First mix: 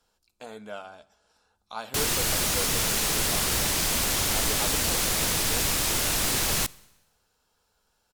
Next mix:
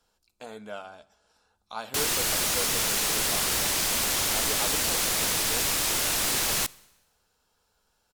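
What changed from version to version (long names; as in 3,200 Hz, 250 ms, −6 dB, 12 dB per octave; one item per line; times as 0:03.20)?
background: add low-shelf EQ 220 Hz −8.5 dB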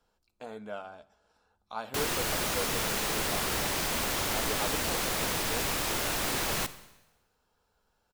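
background: send +9.5 dB
master: add parametric band 9,000 Hz −9.5 dB 2.9 octaves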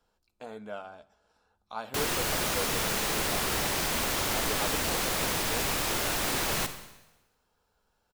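background: send +6.0 dB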